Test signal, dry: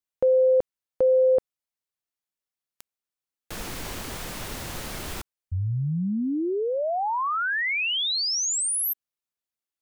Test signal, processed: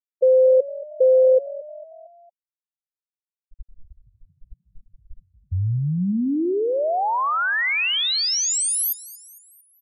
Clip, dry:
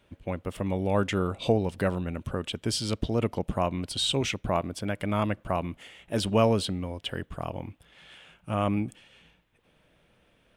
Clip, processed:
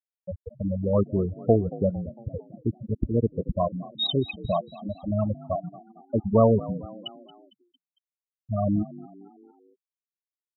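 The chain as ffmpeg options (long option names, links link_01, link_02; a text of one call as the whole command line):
ffmpeg -i in.wav -filter_complex "[0:a]afftfilt=real='re*gte(hypot(re,im),0.224)':imag='im*gte(hypot(re,im),0.224)':win_size=1024:overlap=0.75,asplit=2[link_01][link_02];[link_02]asplit=4[link_03][link_04][link_05][link_06];[link_03]adelay=227,afreqshift=43,volume=-18.5dB[link_07];[link_04]adelay=454,afreqshift=86,volume=-24.3dB[link_08];[link_05]adelay=681,afreqshift=129,volume=-30.2dB[link_09];[link_06]adelay=908,afreqshift=172,volume=-36dB[link_10];[link_07][link_08][link_09][link_10]amix=inputs=4:normalize=0[link_11];[link_01][link_11]amix=inputs=2:normalize=0,volume=4.5dB" out.wav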